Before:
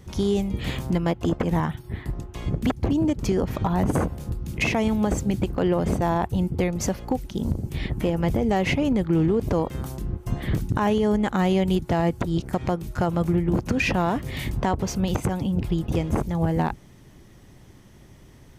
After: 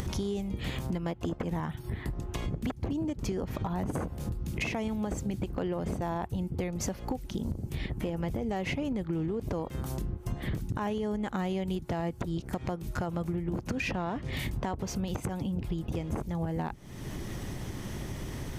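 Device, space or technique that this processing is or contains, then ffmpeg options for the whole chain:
upward and downward compression: -filter_complex "[0:a]acompressor=mode=upward:threshold=-24dB:ratio=2.5,acompressor=threshold=-31dB:ratio=4,asettb=1/sr,asplit=3[link_01][link_02][link_03];[link_01]atrim=end=13.914[link_04];[link_02]atrim=start=13.91:end=14.33,asetpts=PTS-STARTPTS,afade=type=in:duration=0.004:curve=qsin,afade=type=out:start_time=0.416:duration=0.004:curve=qsin,lowpass=5400[link_05];[link_03]atrim=start=14.326[link_06];[link_04][link_05]acrossfade=duration=0.004:curve1=hsin:curve2=qsin[link_07];[link_07][link_06]acrossfade=duration=0.004:curve1=qsin:curve2=hsin"

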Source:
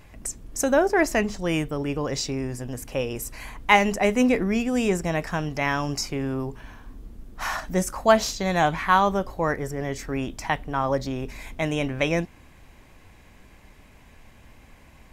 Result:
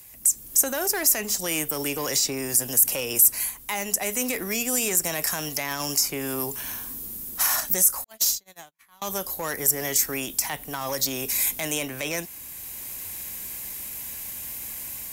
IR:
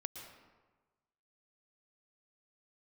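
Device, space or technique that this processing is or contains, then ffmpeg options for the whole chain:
FM broadcast chain: -filter_complex "[0:a]highpass=frequency=70:poles=1,dynaudnorm=framelen=270:gausssize=3:maxgain=12.5dB,acrossover=split=100|290|950|2100[link_01][link_02][link_03][link_04][link_05];[link_01]acompressor=threshold=-43dB:ratio=4[link_06];[link_02]acompressor=threshold=-31dB:ratio=4[link_07];[link_03]acompressor=threshold=-19dB:ratio=4[link_08];[link_04]acompressor=threshold=-23dB:ratio=4[link_09];[link_05]acompressor=threshold=-31dB:ratio=4[link_10];[link_06][link_07][link_08][link_09][link_10]amix=inputs=5:normalize=0,aemphasis=mode=production:type=75fm,alimiter=limit=-12dB:level=0:latency=1:release=25,asoftclip=type=hard:threshold=-15.5dB,lowpass=frequency=15000:width=0.5412,lowpass=frequency=15000:width=1.3066,aemphasis=mode=production:type=75fm,asettb=1/sr,asplit=3[link_11][link_12][link_13];[link_11]atrim=end=8.044[link_14];[link_12]atrim=start=8.04:end=9.02,asetpts=PTS-STARTPTS,afade=type=in:duration=0.004:curve=qsin,afade=type=out:start_time=0.976:duration=0.004:curve=qsin,agate=range=-59dB:threshold=-16dB:ratio=16:detection=peak[link_15];[link_13]atrim=start=9.016[link_16];[link_14][link_15]acrossfade=duration=0.004:curve1=hsin:curve2=qsin[link_17];[link_17][link_16]acrossfade=duration=0.004:curve1=qsin:curve2=hsin,volume=-8dB"

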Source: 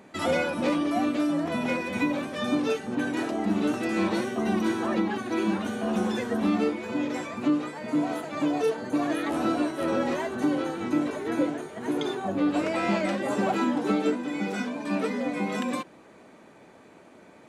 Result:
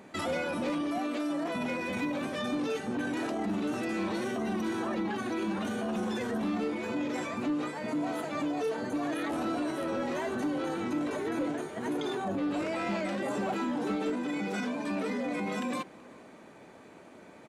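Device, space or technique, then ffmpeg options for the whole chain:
clipper into limiter: -filter_complex "[0:a]asettb=1/sr,asplit=3[link_01][link_02][link_03];[link_01]atrim=end=0.984[link_04];[link_02]atrim=start=0.98:end=1.56,asetpts=PTS-STARTPTS,afade=type=in:duration=0.004:curve=qsin,afade=type=out:start_time=0.576:duration=0.004:curve=qsin,highpass=290[link_05];[link_03]atrim=start=1.556[link_06];[link_04][link_05]acrossfade=duration=0.004:curve1=hsin:curve2=qsin[link_07];[link_07][link_06]acrossfade=duration=0.004:curve1=qsin:curve2=hsin,asplit=2[link_08][link_09];[link_09]adelay=379,volume=-27dB,highshelf=frequency=4000:gain=-8.53[link_10];[link_08][link_10]amix=inputs=2:normalize=0,asoftclip=type=hard:threshold=-18.5dB,alimiter=level_in=1.5dB:limit=-24dB:level=0:latency=1:release=13,volume=-1.5dB"

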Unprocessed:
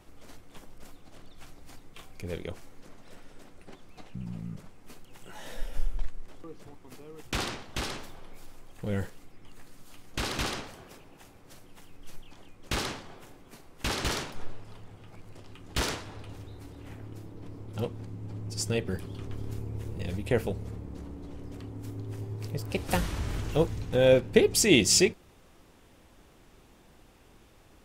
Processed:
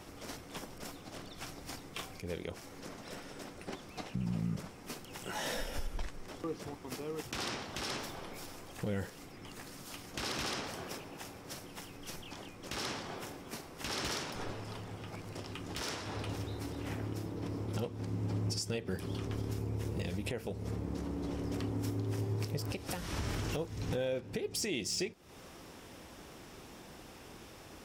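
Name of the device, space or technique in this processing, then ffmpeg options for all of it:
broadcast voice chain: -af "highpass=frequency=110:poles=1,deesser=0.45,acompressor=threshold=-37dB:ratio=3,equalizer=frequency=5400:width_type=o:width=0.23:gain=6,alimiter=level_in=9.5dB:limit=-24dB:level=0:latency=1:release=332,volume=-9.5dB,volume=7.5dB"

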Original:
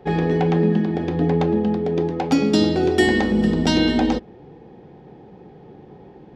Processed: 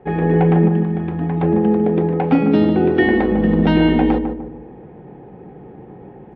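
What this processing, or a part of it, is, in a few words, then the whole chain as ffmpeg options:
action camera in a waterproof case: -filter_complex "[0:a]asettb=1/sr,asplit=3[link_01][link_02][link_03];[link_01]atrim=end=0.684[link_04];[link_02]atrim=start=0.68:end=1.43,asetpts=PTS-STARTPTS,afade=type=in:duration=0.004:curve=qsin,afade=type=out:start_time=0.746:duration=0.004:curve=qsin,equalizer=frequency=125:width_type=o:width=1:gain=-6,equalizer=frequency=250:width_type=o:width=1:gain=-5,equalizer=frequency=500:width_type=o:width=1:gain=-12,equalizer=frequency=2000:width_type=o:width=1:gain=-4,equalizer=frequency=8000:width_type=o:width=1:gain=-11[link_05];[link_03]atrim=start=1.426[link_06];[link_04][link_05]acrossfade=duration=0.004:curve1=hsin:curve2=qsin[link_07];[link_07][link_06]acrossfade=duration=0.004:curve1=qsin:curve2=hsin,lowpass=frequency=2500:width=0.5412,lowpass=frequency=2500:width=1.3066,asplit=2[link_08][link_09];[link_09]adelay=150,lowpass=frequency=1100:poles=1,volume=-5.5dB,asplit=2[link_10][link_11];[link_11]adelay=150,lowpass=frequency=1100:poles=1,volume=0.41,asplit=2[link_12][link_13];[link_13]adelay=150,lowpass=frequency=1100:poles=1,volume=0.41,asplit=2[link_14][link_15];[link_15]adelay=150,lowpass=frequency=1100:poles=1,volume=0.41,asplit=2[link_16][link_17];[link_17]adelay=150,lowpass=frequency=1100:poles=1,volume=0.41[link_18];[link_08][link_10][link_12][link_14][link_16][link_18]amix=inputs=6:normalize=0,dynaudnorm=framelen=180:gausssize=3:maxgain=4dB" -ar 24000 -c:a aac -b:a 64k

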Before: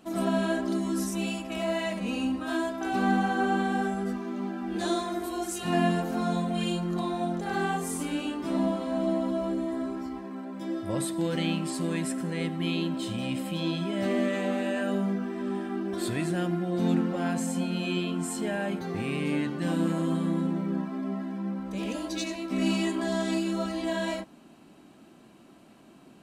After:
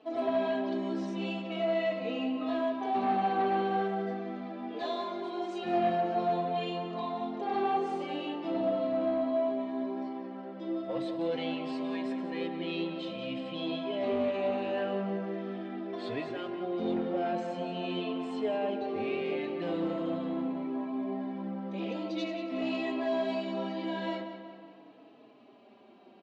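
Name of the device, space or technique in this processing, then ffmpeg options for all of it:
barber-pole flanger into a guitar amplifier: -filter_complex "[0:a]highpass=240,asplit=2[link_01][link_02];[link_02]adelay=4.2,afreqshift=-0.44[link_03];[link_01][link_03]amix=inputs=2:normalize=1,asoftclip=type=tanh:threshold=-26dB,highpass=92,equalizer=frequency=110:width_type=q:width=4:gain=6,equalizer=frequency=170:width_type=q:width=4:gain=-5,equalizer=frequency=450:width_type=q:width=4:gain=7,equalizer=frequency=700:width_type=q:width=4:gain=6,equalizer=frequency=1500:width_type=q:width=4:gain=-6,lowpass=frequency=4100:width=0.5412,lowpass=frequency=4100:width=1.3066,asplit=2[link_04][link_05];[link_05]adelay=184,lowpass=frequency=4400:poles=1,volume=-9dB,asplit=2[link_06][link_07];[link_07]adelay=184,lowpass=frequency=4400:poles=1,volume=0.55,asplit=2[link_08][link_09];[link_09]adelay=184,lowpass=frequency=4400:poles=1,volume=0.55,asplit=2[link_10][link_11];[link_11]adelay=184,lowpass=frequency=4400:poles=1,volume=0.55,asplit=2[link_12][link_13];[link_13]adelay=184,lowpass=frequency=4400:poles=1,volume=0.55,asplit=2[link_14][link_15];[link_15]adelay=184,lowpass=frequency=4400:poles=1,volume=0.55[link_16];[link_04][link_06][link_08][link_10][link_12][link_14][link_16]amix=inputs=7:normalize=0"

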